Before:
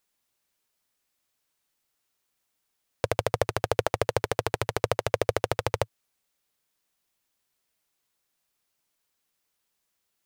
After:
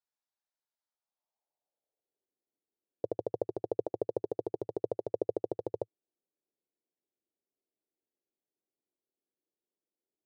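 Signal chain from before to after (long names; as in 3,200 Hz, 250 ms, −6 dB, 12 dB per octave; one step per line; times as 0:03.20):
flat-topped bell 1,800 Hz −14.5 dB
band-pass filter sweep 1,500 Hz → 350 Hz, 0:00.79–0:02.34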